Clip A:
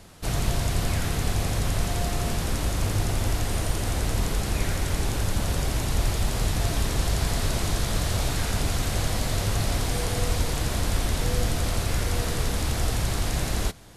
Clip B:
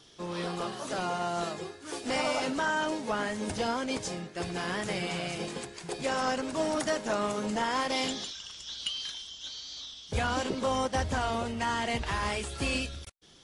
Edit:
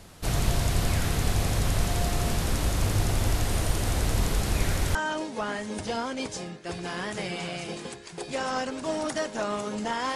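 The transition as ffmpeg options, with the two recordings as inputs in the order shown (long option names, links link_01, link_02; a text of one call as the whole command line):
ffmpeg -i cue0.wav -i cue1.wav -filter_complex "[0:a]apad=whole_dur=10.15,atrim=end=10.15,atrim=end=4.952[link_01];[1:a]atrim=start=2.658:end=7.86[link_02];[link_01][link_02]acrossfade=duration=0.004:curve1=hsin:curve2=hsin" out.wav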